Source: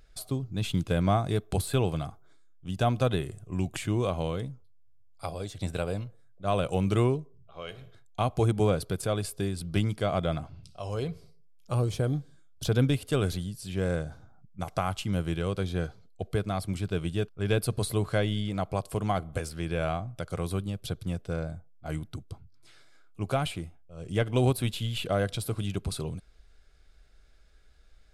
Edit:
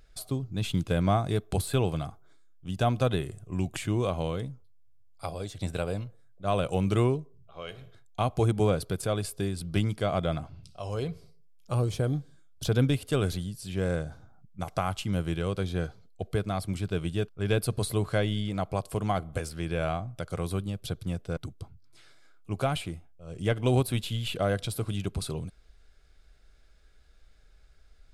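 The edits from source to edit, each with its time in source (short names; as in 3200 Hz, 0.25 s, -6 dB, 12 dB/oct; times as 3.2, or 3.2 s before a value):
21.37–22.07 cut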